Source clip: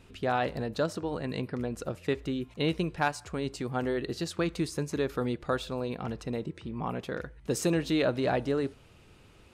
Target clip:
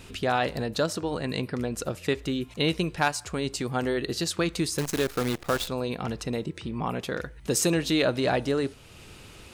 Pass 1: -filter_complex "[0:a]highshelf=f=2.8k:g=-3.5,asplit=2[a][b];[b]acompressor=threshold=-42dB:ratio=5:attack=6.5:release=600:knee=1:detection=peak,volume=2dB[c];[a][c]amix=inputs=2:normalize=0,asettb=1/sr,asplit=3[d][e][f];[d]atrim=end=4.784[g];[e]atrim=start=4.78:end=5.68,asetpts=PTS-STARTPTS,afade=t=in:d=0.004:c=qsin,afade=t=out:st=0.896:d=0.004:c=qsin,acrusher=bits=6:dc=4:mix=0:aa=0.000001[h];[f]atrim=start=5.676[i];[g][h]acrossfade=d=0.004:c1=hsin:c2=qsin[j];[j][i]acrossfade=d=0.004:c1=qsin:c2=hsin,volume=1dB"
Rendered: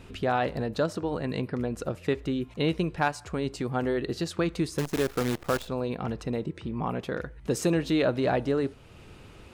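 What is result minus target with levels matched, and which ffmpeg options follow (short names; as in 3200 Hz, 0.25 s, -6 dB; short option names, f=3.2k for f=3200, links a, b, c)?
4000 Hz band -6.0 dB
-filter_complex "[0:a]highshelf=f=2.8k:g=8.5,asplit=2[a][b];[b]acompressor=threshold=-42dB:ratio=5:attack=6.5:release=600:knee=1:detection=peak,volume=2dB[c];[a][c]amix=inputs=2:normalize=0,asettb=1/sr,asplit=3[d][e][f];[d]atrim=end=4.784[g];[e]atrim=start=4.78:end=5.68,asetpts=PTS-STARTPTS,afade=t=in:d=0.004:c=qsin,afade=t=out:st=0.896:d=0.004:c=qsin,acrusher=bits=6:dc=4:mix=0:aa=0.000001[h];[f]atrim=start=5.676[i];[g][h]acrossfade=d=0.004:c1=hsin:c2=qsin[j];[j][i]acrossfade=d=0.004:c1=qsin:c2=hsin,volume=1dB"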